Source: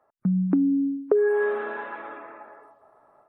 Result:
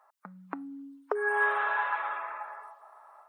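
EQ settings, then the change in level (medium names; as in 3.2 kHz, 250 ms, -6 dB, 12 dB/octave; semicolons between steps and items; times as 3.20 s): resonant high-pass 940 Hz, resonance Q 2; treble shelf 2.3 kHz +9 dB; 0.0 dB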